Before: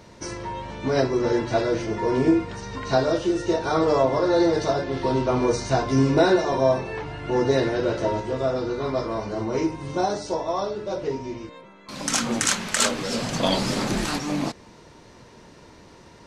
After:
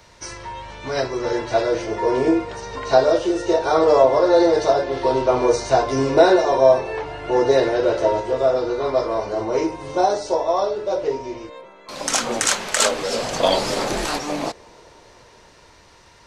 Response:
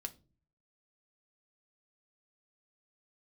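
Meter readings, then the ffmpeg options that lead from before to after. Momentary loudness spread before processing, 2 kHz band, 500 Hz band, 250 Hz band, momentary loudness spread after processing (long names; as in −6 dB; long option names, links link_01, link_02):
12 LU, +2.5 dB, +6.0 dB, −0.5 dB, 14 LU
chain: -filter_complex "[0:a]equalizer=frequency=230:width_type=o:width=2.4:gain=-13.5,acrossover=split=330|670|1800[link_01][link_02][link_03][link_04];[link_02]dynaudnorm=framelen=140:gausssize=21:maxgain=14dB[link_05];[link_01][link_05][link_03][link_04]amix=inputs=4:normalize=0,volume=3dB"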